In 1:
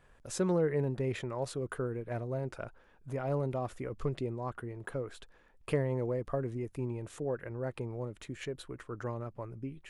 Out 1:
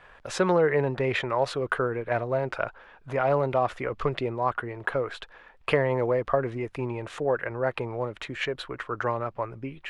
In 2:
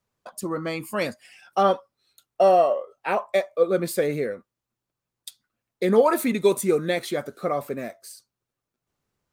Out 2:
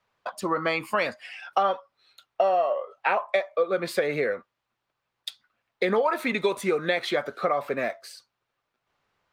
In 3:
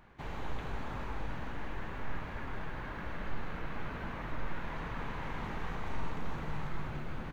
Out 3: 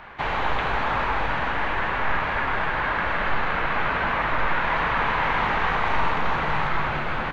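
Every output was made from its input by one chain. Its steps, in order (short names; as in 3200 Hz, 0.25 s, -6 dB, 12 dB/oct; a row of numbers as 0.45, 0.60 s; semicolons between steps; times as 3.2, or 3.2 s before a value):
three-band isolator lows -13 dB, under 570 Hz, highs -19 dB, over 4200 Hz; compressor 5:1, threshold -32 dBFS; normalise peaks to -9 dBFS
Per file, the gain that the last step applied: +16.0, +10.5, +21.0 dB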